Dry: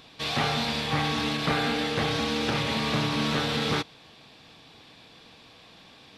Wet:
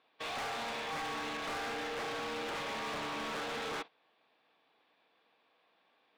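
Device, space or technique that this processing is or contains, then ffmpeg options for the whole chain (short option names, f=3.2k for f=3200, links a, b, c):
walkie-talkie: -af "highpass=460,lowpass=2.2k,asoftclip=type=hard:threshold=-35dB,agate=range=-14dB:threshold=-44dB:ratio=16:detection=peak,volume=-1.5dB"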